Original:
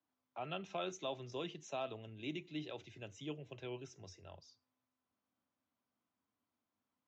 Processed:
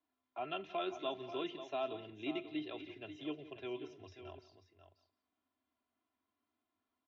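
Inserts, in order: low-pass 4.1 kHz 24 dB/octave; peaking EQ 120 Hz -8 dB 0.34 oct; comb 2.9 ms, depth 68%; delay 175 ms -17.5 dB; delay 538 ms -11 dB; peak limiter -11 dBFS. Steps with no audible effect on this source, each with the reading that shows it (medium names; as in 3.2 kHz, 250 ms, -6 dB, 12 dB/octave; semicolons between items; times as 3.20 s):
peak limiter -11 dBFS: peak at its input -26.5 dBFS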